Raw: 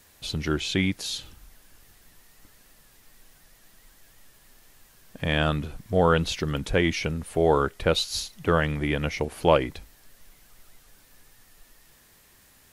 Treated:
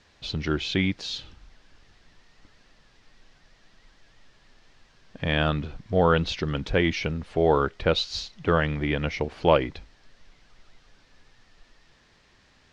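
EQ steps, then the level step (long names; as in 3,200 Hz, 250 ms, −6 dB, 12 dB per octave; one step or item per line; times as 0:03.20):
low-pass filter 5,300 Hz 24 dB per octave
0.0 dB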